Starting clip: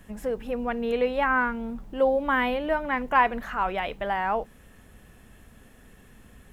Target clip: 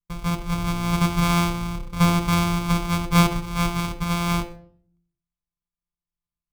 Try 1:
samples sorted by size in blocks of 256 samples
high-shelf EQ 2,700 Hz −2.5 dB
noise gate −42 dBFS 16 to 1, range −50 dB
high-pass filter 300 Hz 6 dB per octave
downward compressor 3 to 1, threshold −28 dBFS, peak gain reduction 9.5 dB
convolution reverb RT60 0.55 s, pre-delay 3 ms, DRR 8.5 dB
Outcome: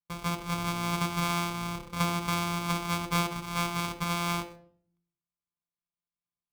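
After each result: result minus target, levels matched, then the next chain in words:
downward compressor: peak gain reduction +9.5 dB; 250 Hz band −2.5 dB
samples sorted by size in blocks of 256 samples
high-shelf EQ 2,700 Hz −2.5 dB
noise gate −42 dBFS 16 to 1, range −50 dB
high-pass filter 300 Hz 6 dB per octave
convolution reverb RT60 0.55 s, pre-delay 3 ms, DRR 8.5 dB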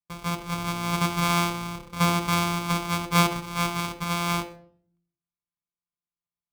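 250 Hz band −2.5 dB
samples sorted by size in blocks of 256 samples
high-shelf EQ 2,700 Hz −2.5 dB
noise gate −42 dBFS 16 to 1, range −50 dB
convolution reverb RT60 0.55 s, pre-delay 3 ms, DRR 8.5 dB

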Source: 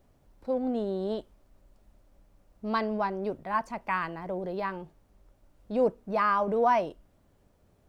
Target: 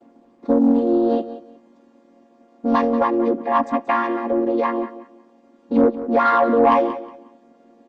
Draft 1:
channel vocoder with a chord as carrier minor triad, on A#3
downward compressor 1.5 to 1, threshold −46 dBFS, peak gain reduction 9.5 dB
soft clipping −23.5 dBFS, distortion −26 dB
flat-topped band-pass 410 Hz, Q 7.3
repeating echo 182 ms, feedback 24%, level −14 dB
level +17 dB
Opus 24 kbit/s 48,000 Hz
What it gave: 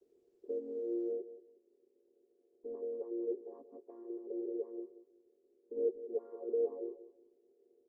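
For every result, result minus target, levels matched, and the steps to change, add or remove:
500 Hz band +3.5 dB; downward compressor: peak gain reduction +3.5 dB
remove: flat-topped band-pass 410 Hz, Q 7.3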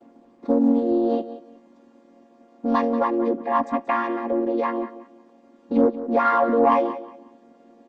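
downward compressor: peak gain reduction +3.5 dB
change: downward compressor 1.5 to 1, threshold −35.5 dBFS, peak gain reduction 6 dB

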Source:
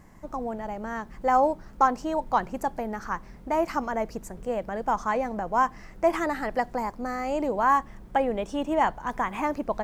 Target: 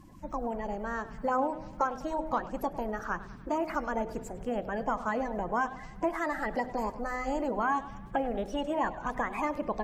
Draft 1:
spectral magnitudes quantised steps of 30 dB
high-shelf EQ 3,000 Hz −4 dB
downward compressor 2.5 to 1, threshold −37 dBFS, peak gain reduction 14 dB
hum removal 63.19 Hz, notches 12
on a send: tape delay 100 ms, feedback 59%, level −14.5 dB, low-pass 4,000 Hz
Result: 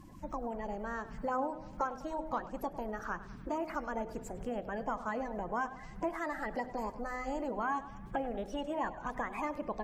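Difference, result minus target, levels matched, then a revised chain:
downward compressor: peak gain reduction +5.5 dB
spectral magnitudes quantised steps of 30 dB
high-shelf EQ 3,000 Hz −4 dB
downward compressor 2.5 to 1, threshold −28 dBFS, peak gain reduction 9 dB
hum removal 63.19 Hz, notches 12
on a send: tape delay 100 ms, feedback 59%, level −14.5 dB, low-pass 4,000 Hz

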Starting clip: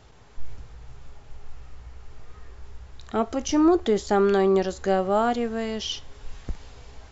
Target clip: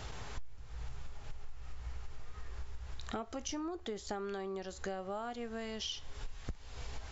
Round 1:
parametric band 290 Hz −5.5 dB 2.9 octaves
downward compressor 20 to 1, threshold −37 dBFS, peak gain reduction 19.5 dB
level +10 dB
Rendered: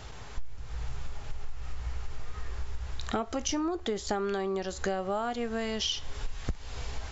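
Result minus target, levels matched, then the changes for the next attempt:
downward compressor: peak gain reduction −9 dB
change: downward compressor 20 to 1, threshold −46.5 dBFS, peak gain reduction 28.5 dB

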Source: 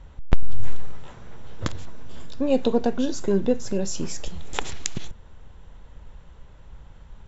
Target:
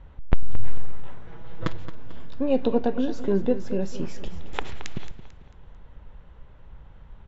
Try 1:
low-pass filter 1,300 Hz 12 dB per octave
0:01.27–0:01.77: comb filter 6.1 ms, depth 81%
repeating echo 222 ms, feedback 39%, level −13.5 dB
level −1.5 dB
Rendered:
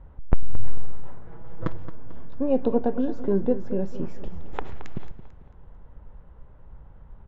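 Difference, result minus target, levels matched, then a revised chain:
4,000 Hz band −12.5 dB
low-pass filter 3,000 Hz 12 dB per octave
0:01.27–0:01.77: comb filter 6.1 ms, depth 81%
repeating echo 222 ms, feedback 39%, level −13.5 dB
level −1.5 dB

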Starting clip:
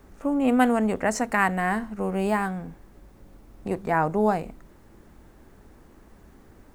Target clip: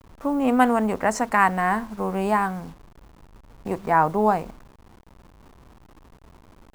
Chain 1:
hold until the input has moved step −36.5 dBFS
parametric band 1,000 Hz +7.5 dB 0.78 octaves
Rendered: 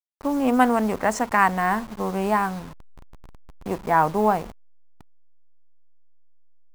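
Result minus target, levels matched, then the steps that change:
hold until the input has moved: distortion +9 dB
change: hold until the input has moved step −45.5 dBFS

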